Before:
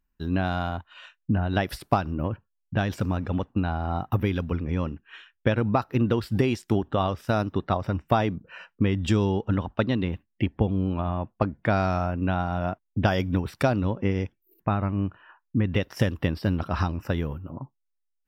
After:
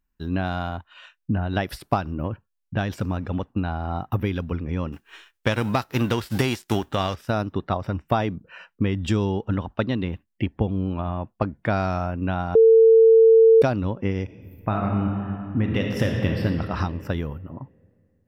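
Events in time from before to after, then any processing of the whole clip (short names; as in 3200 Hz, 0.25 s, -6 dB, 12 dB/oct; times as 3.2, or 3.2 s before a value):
4.92–7.14 spectral whitening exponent 0.6
12.55–13.62 bleep 450 Hz -9.5 dBFS
14.23–16.44 reverb throw, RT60 2.6 s, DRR 0.5 dB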